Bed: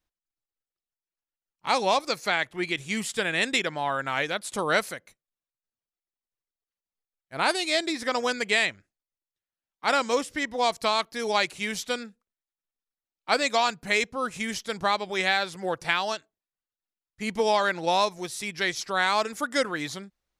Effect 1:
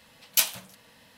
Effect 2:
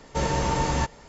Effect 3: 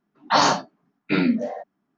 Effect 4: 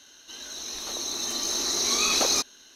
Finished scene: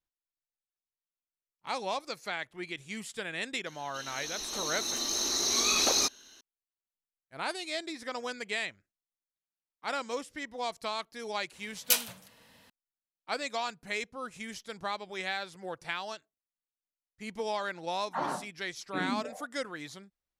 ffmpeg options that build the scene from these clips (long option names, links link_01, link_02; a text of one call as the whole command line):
ffmpeg -i bed.wav -i cue0.wav -i cue1.wav -i cue2.wav -i cue3.wav -filter_complex "[0:a]volume=-10.5dB[link_01];[3:a]lowpass=1700[link_02];[4:a]atrim=end=2.75,asetpts=PTS-STARTPTS,volume=-3dB,afade=type=in:duration=0.004:curve=hsin,afade=type=out:start_time=2.746:duration=0.004:curve=hsin,adelay=3660[link_03];[1:a]atrim=end=1.17,asetpts=PTS-STARTPTS,volume=-3.5dB,afade=type=in:duration=0.004:curve=hsin,afade=type=out:start_time=1.166:duration=0.004:curve=hsin,adelay=11530[link_04];[link_02]atrim=end=1.97,asetpts=PTS-STARTPTS,volume=-14.5dB,afade=type=in:duration=0.004:curve=hsin,afade=type=out:start_time=1.966:duration=0.004:curve=hsin,adelay=17830[link_05];[link_01][link_03][link_04][link_05]amix=inputs=4:normalize=0" out.wav